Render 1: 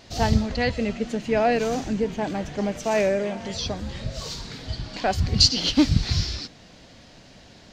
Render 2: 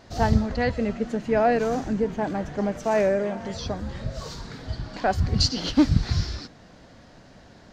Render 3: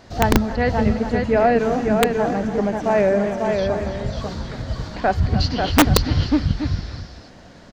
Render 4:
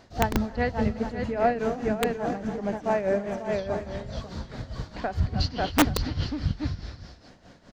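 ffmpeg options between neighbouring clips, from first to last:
ffmpeg -i in.wav -af "highshelf=frequency=2000:width_type=q:width=1.5:gain=-6" out.wav
ffmpeg -i in.wav -filter_complex "[0:a]aecho=1:1:282|294|543|825:0.112|0.178|0.596|0.224,acrossover=split=4000[link_01][link_02];[link_02]acompressor=threshold=-52dB:ratio=4:attack=1:release=60[link_03];[link_01][link_03]amix=inputs=2:normalize=0,aeval=exprs='(mod(2.99*val(0)+1,2)-1)/2.99':channel_layout=same,volume=4dB" out.wav
ffmpeg -i in.wav -af "tremolo=f=4.8:d=0.71,volume=-5dB" out.wav

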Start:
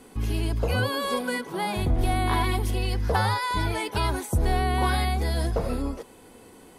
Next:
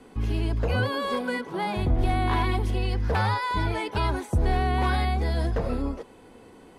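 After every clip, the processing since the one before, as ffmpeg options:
ffmpeg -i in.wav -filter_complex "[0:a]aemphasis=mode=reproduction:type=50fm,acrossover=split=450|930[link_01][link_02][link_03];[link_02]aeval=exprs='0.0355*(abs(mod(val(0)/0.0355+3,4)-2)-1)':channel_layout=same[link_04];[link_01][link_04][link_03]amix=inputs=3:normalize=0" out.wav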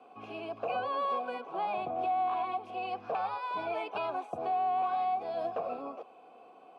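ffmpeg -i in.wav -filter_complex "[0:a]asplit=3[link_01][link_02][link_03];[link_01]bandpass=frequency=730:width_type=q:width=8,volume=0dB[link_04];[link_02]bandpass=frequency=1090:width_type=q:width=8,volume=-6dB[link_05];[link_03]bandpass=frequency=2440:width_type=q:width=8,volume=-9dB[link_06];[link_04][link_05][link_06]amix=inputs=3:normalize=0,alimiter=level_in=8dB:limit=-24dB:level=0:latency=1:release=326,volume=-8dB,highpass=frequency=120:width=0.5412,highpass=frequency=120:width=1.3066,volume=7.5dB" out.wav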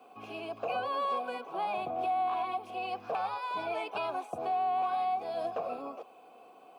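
ffmpeg -i in.wav -af "aemphasis=mode=production:type=50fm" out.wav

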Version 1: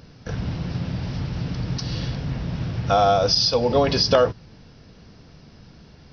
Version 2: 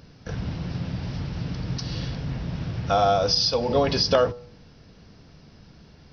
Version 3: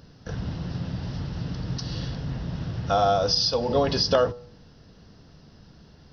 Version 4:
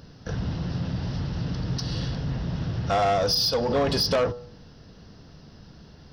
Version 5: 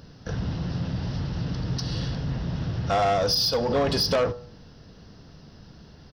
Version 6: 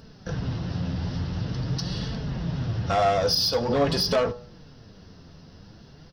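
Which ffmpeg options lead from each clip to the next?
ffmpeg -i in.wav -af "bandreject=frequency=121.7:width_type=h:width=4,bandreject=frequency=243.4:width_type=h:width=4,bandreject=frequency=365.1:width_type=h:width=4,bandreject=frequency=486.8:width_type=h:width=4,bandreject=frequency=608.5:width_type=h:width=4,bandreject=frequency=730.2:width_type=h:width=4,bandreject=frequency=851.9:width_type=h:width=4,bandreject=frequency=973.6:width_type=h:width=4,bandreject=frequency=1095.3:width_type=h:width=4,bandreject=frequency=1217:width_type=h:width=4,bandreject=frequency=1338.7:width_type=h:width=4,volume=-2.5dB" out.wav
ffmpeg -i in.wav -af "equalizer=frequency=2300:width=6.3:gain=-9,volume=-1dB" out.wav
ffmpeg -i in.wav -af "asoftclip=type=tanh:threshold=-21dB,volume=3dB" out.wav
ffmpeg -i in.wav -af "aecho=1:1:77:0.0891" out.wav
ffmpeg -i in.wav -af "flanger=delay=4.5:depth=7.4:regen=47:speed=0.47:shape=sinusoidal,volume=4dB" out.wav

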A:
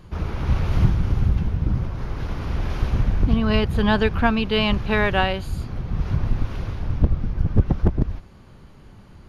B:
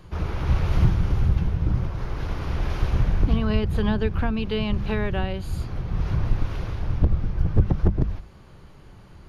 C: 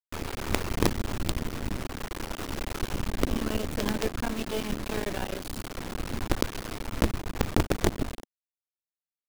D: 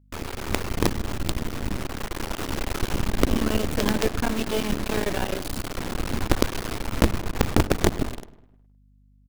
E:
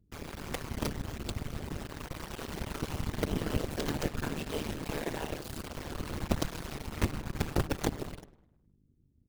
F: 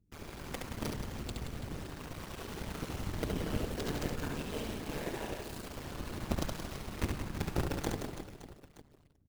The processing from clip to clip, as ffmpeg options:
ffmpeg -i in.wav -filter_complex "[0:a]equalizer=frequency=240:width=7:gain=-9,bandreject=frequency=50:width_type=h:width=6,bandreject=frequency=100:width_type=h:width=6,bandreject=frequency=150:width_type=h:width=6,bandreject=frequency=200:width_type=h:width=6,acrossover=split=380[link_01][link_02];[link_02]acompressor=threshold=-31dB:ratio=5[link_03];[link_01][link_03]amix=inputs=2:normalize=0" out.wav
ffmpeg -i in.wav -af "acrusher=bits=3:dc=4:mix=0:aa=0.000001,asoftclip=type=tanh:threshold=-7.5dB,lowshelf=frequency=190:width_type=q:width=1.5:gain=-7" out.wav
ffmpeg -i in.wav -filter_complex "[0:a]dynaudnorm=framelen=530:gausssize=7:maxgain=4.5dB,aeval=exprs='val(0)+0.00141*(sin(2*PI*50*n/s)+sin(2*PI*2*50*n/s)/2+sin(2*PI*3*50*n/s)/3+sin(2*PI*4*50*n/s)/4+sin(2*PI*5*50*n/s)/5)':channel_layout=same,asplit=2[link_01][link_02];[link_02]adelay=103,lowpass=frequency=3500:poles=1,volume=-18dB,asplit=2[link_03][link_04];[link_04]adelay=103,lowpass=frequency=3500:poles=1,volume=0.54,asplit=2[link_05][link_06];[link_06]adelay=103,lowpass=frequency=3500:poles=1,volume=0.54,asplit=2[link_07][link_08];[link_08]adelay=103,lowpass=frequency=3500:poles=1,volume=0.54,asplit=2[link_09][link_10];[link_10]adelay=103,lowpass=frequency=3500:poles=1,volume=0.54[link_11];[link_01][link_03][link_05][link_07][link_09][link_11]amix=inputs=6:normalize=0,volume=1.5dB" out.wav
ffmpeg -i in.wav -af "afftfilt=real='hypot(re,im)*cos(2*PI*random(0))':imag='hypot(re,im)*sin(2*PI*random(1))':win_size=512:overlap=0.75,tremolo=f=150:d=0.857" out.wav
ffmpeg -i in.wav -af "aecho=1:1:70|175|332.5|568.8|923.1:0.631|0.398|0.251|0.158|0.1,volume=-5dB" out.wav

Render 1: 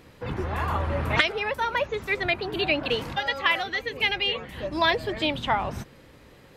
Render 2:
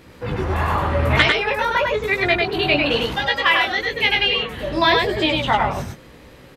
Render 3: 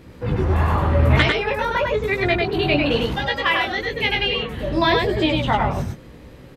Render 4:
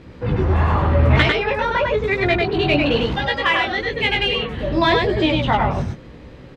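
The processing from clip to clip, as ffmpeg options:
ffmpeg -i in.wav -filter_complex "[0:a]flanger=delay=15.5:depth=6:speed=0.95,asplit=2[link_01][link_02];[link_02]aecho=0:1:99:0.708[link_03];[link_01][link_03]amix=inputs=2:normalize=0,volume=8.5dB" out.wav
ffmpeg -i in.wav -af "lowshelf=frequency=460:gain=9,volume=-4dB" out.wav
ffmpeg -i in.wav -filter_complex "[0:a]lowpass=5200,asplit=2[link_01][link_02];[link_02]asoftclip=type=tanh:threshold=-16.5dB,volume=-10.5dB[link_03];[link_01][link_03]amix=inputs=2:normalize=0" out.wav

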